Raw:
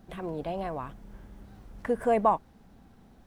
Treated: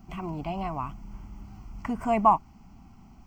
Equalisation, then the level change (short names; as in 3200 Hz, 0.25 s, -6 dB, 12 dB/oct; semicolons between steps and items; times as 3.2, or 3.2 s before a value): fixed phaser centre 2500 Hz, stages 8; +6.0 dB